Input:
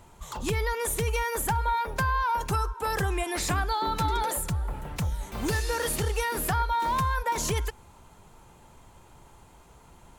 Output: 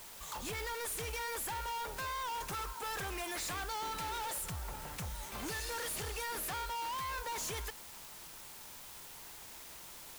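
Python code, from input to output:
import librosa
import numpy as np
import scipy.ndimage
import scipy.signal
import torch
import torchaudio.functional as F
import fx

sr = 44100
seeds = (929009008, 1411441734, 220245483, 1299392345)

p1 = fx.low_shelf(x, sr, hz=470.0, db=-11.0)
p2 = np.clip(10.0 ** (36.0 / 20.0) * p1, -1.0, 1.0) / 10.0 ** (36.0 / 20.0)
p3 = fx.quant_dither(p2, sr, seeds[0], bits=6, dither='triangular')
p4 = p2 + (p3 * librosa.db_to_amplitude(-11.0))
y = p4 * librosa.db_to_amplitude(-4.0)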